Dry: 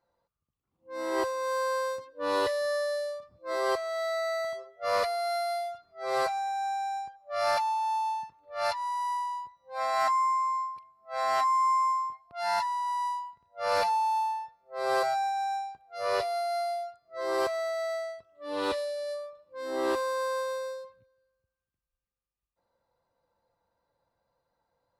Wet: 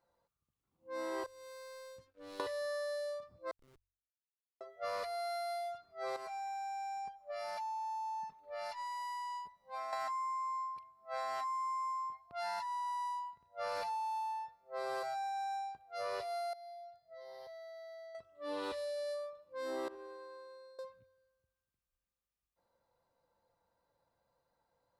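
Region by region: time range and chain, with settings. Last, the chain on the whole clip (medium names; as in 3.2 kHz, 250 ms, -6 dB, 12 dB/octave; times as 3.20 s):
1.26–2.40 s: amplifier tone stack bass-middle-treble 10-0-1 + waveshaping leveller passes 3 + tape noise reduction on one side only encoder only
3.51–4.61 s: inverse Chebyshev band-stop 630–9500 Hz, stop band 50 dB + feedback comb 68 Hz, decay 1 s, mix 30% + Schmitt trigger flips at -52 dBFS
6.16–9.93 s: comb 4.7 ms, depth 67% + compression, threshold -36 dBFS
16.53–18.15 s: static phaser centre 1.7 kHz, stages 8 + compression, threshold -47 dBFS + Butterworth band-stop 1.5 kHz, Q 3.8
19.88–20.79 s: low-pass 1.5 kHz 6 dB/octave + feedback comb 79 Hz, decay 1.4 s, mix 90%
whole clip: de-hum 46.92 Hz, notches 2; compression, threshold -35 dBFS; trim -2 dB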